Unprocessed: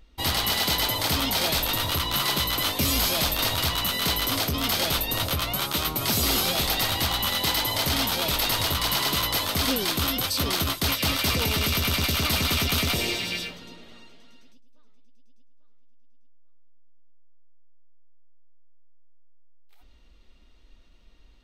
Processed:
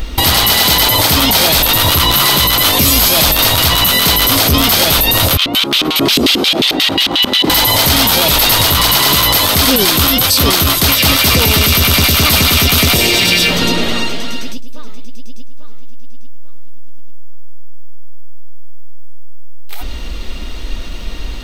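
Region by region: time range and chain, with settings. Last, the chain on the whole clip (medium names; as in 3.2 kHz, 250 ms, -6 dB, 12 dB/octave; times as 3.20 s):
5.37–7.50 s: bass shelf 210 Hz -8 dB + LFO band-pass square 5.6 Hz 290–3100 Hz
whole clip: treble shelf 9.3 kHz +6.5 dB; compression 3:1, threshold -39 dBFS; loudness maximiser +34 dB; trim -1 dB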